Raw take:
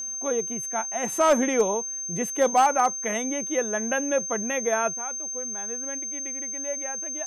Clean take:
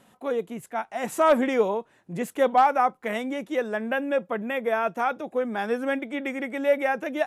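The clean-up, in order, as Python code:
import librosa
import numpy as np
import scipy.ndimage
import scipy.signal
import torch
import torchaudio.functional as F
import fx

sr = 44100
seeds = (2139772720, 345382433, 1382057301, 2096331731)

y = fx.fix_declip(x, sr, threshold_db=-13.0)
y = fx.notch(y, sr, hz=6300.0, q=30.0)
y = fx.gain(y, sr, db=fx.steps((0.0, 0.0), (4.94, 12.0)))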